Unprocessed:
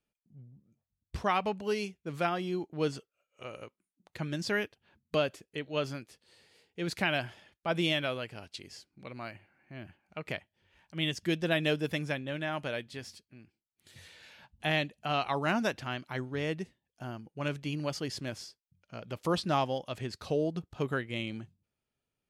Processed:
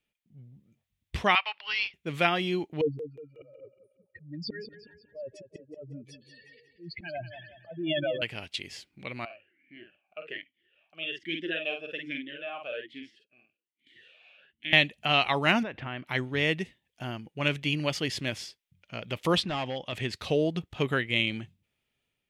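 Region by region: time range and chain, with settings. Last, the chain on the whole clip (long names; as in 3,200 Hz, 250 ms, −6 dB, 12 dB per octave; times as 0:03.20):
0:01.35–0:01.94: high-pass filter 990 Hz 24 dB per octave + bad sample-rate conversion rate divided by 4×, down none, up filtered
0:02.81–0:08.22: expanding power law on the bin magnitudes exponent 3.9 + volume swells 394 ms + repeating echo 183 ms, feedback 43%, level −11.5 dB
0:09.25–0:14.73: double-tracking delay 49 ms −5 dB + formant filter swept between two vowels a-i 1.2 Hz
0:15.63–0:16.07: low-pass filter 1,800 Hz + downward compressor 12 to 1, threshold −35 dBFS
0:19.43–0:19.93: gain into a clipping stage and back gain 27 dB + downward compressor 3 to 1, threshold −35 dBFS + high-frequency loss of the air 86 metres
whole clip: flat-topped bell 2,600 Hz +8.5 dB 1.2 octaves; automatic gain control gain up to 4 dB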